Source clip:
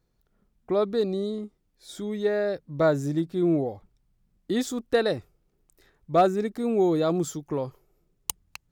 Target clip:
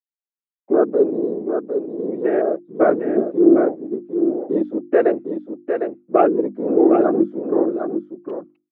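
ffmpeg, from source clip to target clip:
-filter_complex "[0:a]afwtdn=0.0158,agate=range=-33dB:threshold=-49dB:ratio=3:detection=peak,apsyclip=13.5dB,afftfilt=real='hypot(re,im)*cos(2*PI*random(0))':imag='hypot(re,im)*sin(2*PI*random(1))':win_size=512:overlap=0.75,highpass=f=240:w=0.5412,highpass=f=240:w=1.3066,equalizer=f=340:t=q:w=4:g=7,equalizer=f=920:t=q:w=4:g=-7,equalizer=f=1.8k:t=q:w=4:g=-5,lowpass=f=2.2k:w=0.5412,lowpass=f=2.2k:w=1.3066,bandreject=f=50:t=h:w=6,bandreject=f=100:t=h:w=6,bandreject=f=150:t=h:w=6,bandreject=f=200:t=h:w=6,bandreject=f=250:t=h:w=6,bandreject=f=300:t=h:w=6,bandreject=f=350:t=h:w=6,asplit=2[a][b];[b]aecho=0:1:755:0.473[c];[a][c]amix=inputs=2:normalize=0,volume=-1dB"

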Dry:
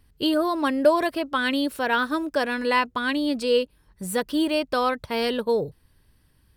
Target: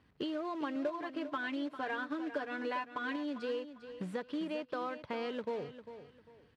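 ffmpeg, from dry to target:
-filter_complex "[0:a]asettb=1/sr,asplit=3[a][b][c];[a]atrim=end=0.754[d];[b]atrim=start=0.75:end=3.16,asetpts=PTS-STARTPTS,afade=t=in:d=0.004:c=qsin,afade=t=out:st=2.406:d=0.004:c=qsin,aecho=1:1:6.8:0.75,atrim=end_sample=106281[e];[c]atrim=start=3.156[f];[d][e]acrossfade=d=0.004:c1=hsin:c2=qsin[g];[g][f]acrossfade=d=0.004:c1=qsin:c2=hsin,acompressor=threshold=-36dB:ratio=6,acrusher=bits=3:mode=log:mix=0:aa=0.000001,highpass=140,lowpass=2.7k,aecho=1:1:399|798|1197:0.251|0.0728|0.0211"

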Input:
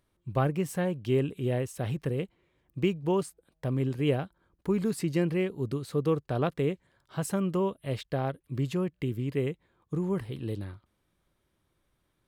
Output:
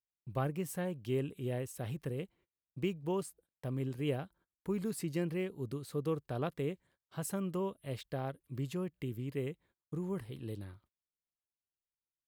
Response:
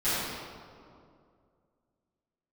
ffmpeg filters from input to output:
-af "agate=range=-27dB:threshold=-56dB:ratio=16:detection=peak,highshelf=f=10k:g=11,volume=-8dB"

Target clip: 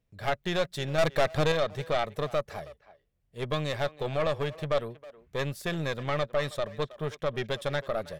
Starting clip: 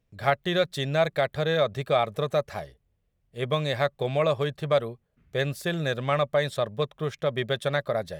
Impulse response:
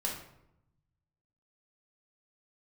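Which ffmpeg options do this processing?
-filter_complex "[0:a]asettb=1/sr,asplit=3[a][b][c];[a]atrim=end=0.984[d];[b]atrim=start=0.98:end=1.52,asetpts=PTS-STARTPTS,afade=t=in:d=0.004:c=qsin,afade=t=out:st=0.536:d=0.004:c=qsin,acontrast=76[e];[c]atrim=start=1.516[f];[d][e]acrossfade=d=0.004:c1=hsin:c2=qsin[g];[g][f]acrossfade=d=0.004:c1=qsin:c2=hsin,aeval=exprs='(tanh(10*val(0)+0.65)-tanh(0.65))/10':c=same,asplit=2[h][i];[i]adelay=320,highpass=300,lowpass=3.4k,asoftclip=type=hard:threshold=-26dB,volume=-16dB[j];[h][j]amix=inputs=2:normalize=0"

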